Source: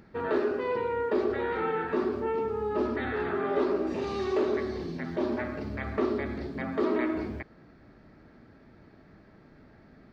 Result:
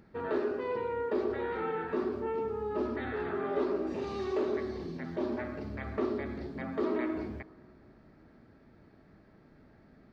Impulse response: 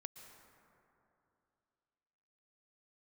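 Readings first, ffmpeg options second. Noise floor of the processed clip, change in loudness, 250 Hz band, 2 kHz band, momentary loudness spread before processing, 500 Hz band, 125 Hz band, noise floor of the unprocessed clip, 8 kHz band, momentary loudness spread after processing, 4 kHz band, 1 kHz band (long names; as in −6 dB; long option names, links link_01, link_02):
−60 dBFS, −4.0 dB, −4.0 dB, −5.5 dB, 7 LU, −4.0 dB, −4.0 dB, −56 dBFS, can't be measured, 7 LU, −5.5 dB, −5.0 dB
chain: -filter_complex "[0:a]asplit=2[link_01][link_02];[link_02]lowpass=1400[link_03];[1:a]atrim=start_sample=2205[link_04];[link_03][link_04]afir=irnorm=-1:irlink=0,volume=-8dB[link_05];[link_01][link_05]amix=inputs=2:normalize=0,volume=-5.5dB"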